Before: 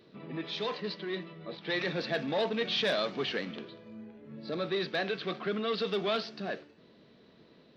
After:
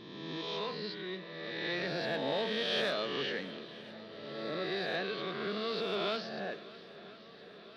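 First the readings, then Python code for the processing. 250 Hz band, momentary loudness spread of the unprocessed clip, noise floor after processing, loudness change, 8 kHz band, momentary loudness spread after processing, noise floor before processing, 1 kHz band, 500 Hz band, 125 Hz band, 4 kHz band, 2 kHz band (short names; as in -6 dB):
-3.5 dB, 14 LU, -53 dBFS, -2.5 dB, n/a, 17 LU, -60 dBFS, -2.0 dB, -3.0 dB, -3.5 dB, -1.5 dB, -1.5 dB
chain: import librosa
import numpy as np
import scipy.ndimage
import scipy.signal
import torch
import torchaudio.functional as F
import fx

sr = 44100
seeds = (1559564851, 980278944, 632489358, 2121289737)

y = fx.spec_swells(x, sr, rise_s=1.64)
y = fx.echo_swing(y, sr, ms=1009, ratio=1.5, feedback_pct=70, wet_db=-19.5)
y = F.gain(torch.from_numpy(y), -7.0).numpy()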